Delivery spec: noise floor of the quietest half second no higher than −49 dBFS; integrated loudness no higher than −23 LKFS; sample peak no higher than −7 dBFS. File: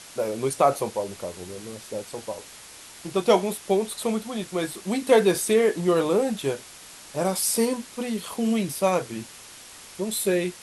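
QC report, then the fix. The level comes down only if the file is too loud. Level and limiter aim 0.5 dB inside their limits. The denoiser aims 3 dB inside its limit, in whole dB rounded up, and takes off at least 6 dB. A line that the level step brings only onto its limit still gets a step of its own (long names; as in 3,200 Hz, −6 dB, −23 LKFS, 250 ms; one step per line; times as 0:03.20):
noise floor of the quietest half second −45 dBFS: out of spec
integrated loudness −25.0 LKFS: in spec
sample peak −5.5 dBFS: out of spec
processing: broadband denoise 7 dB, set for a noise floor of −45 dBFS
brickwall limiter −7.5 dBFS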